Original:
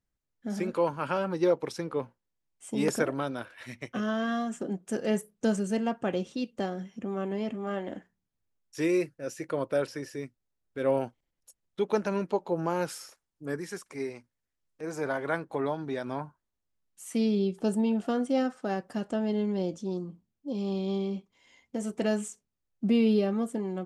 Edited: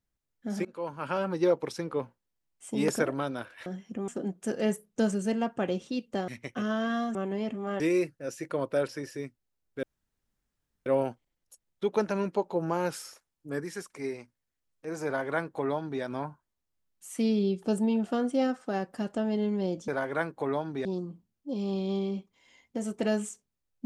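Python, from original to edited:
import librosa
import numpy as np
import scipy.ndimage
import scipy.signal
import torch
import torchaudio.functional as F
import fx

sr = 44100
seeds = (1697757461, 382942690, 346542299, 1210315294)

y = fx.edit(x, sr, fx.fade_in_from(start_s=0.65, length_s=0.57, floor_db=-23.0),
    fx.swap(start_s=3.66, length_s=0.87, other_s=6.73, other_length_s=0.42),
    fx.cut(start_s=7.8, length_s=0.99),
    fx.insert_room_tone(at_s=10.82, length_s=1.03),
    fx.duplicate(start_s=15.01, length_s=0.97, to_s=19.84), tone=tone)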